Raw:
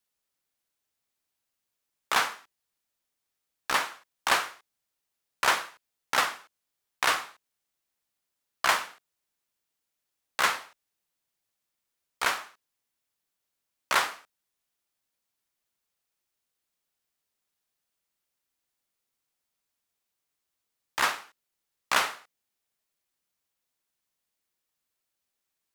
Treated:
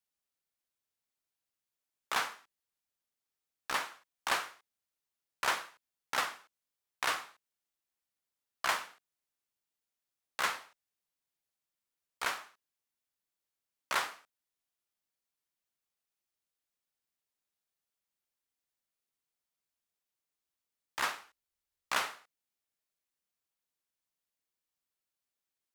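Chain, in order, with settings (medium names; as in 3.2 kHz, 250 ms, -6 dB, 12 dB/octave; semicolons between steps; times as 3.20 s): 21.22–21.92 s: resonant low shelf 100 Hz +8.5 dB, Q 1.5; trim -7.5 dB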